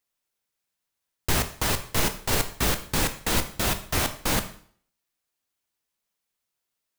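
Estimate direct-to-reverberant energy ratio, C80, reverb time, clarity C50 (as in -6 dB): 8.0 dB, 16.0 dB, 0.55 s, 12.5 dB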